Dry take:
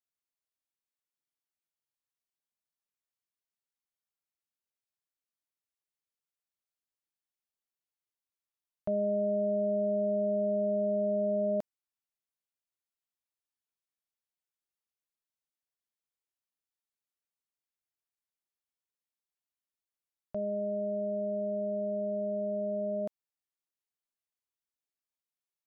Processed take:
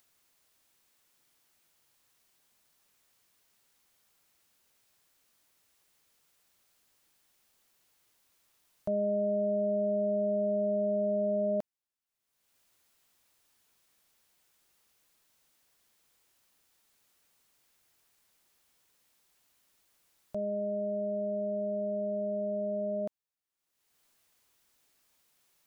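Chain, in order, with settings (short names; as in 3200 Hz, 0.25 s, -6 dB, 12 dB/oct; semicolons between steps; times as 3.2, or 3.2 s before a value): upward compressor, threshold -53 dBFS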